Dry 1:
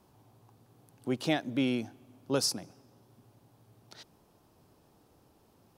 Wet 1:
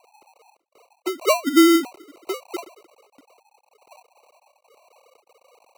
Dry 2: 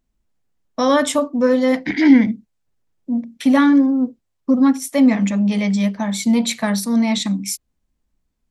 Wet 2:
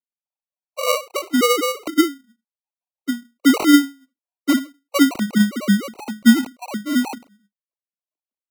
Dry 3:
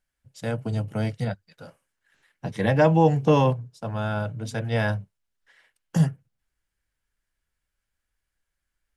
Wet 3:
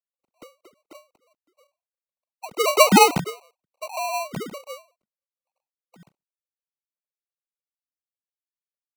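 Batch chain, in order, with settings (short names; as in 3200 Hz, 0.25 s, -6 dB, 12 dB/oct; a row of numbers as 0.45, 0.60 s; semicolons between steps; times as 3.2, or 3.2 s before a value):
sine-wave speech; brick-wall FIR low-pass 1200 Hz; sample-and-hold 26×; dynamic EQ 510 Hz, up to -4 dB, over -30 dBFS, Q 2.1; ending taper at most 210 dB/s; match loudness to -19 LUFS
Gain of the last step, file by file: +15.0, +2.5, +6.0 dB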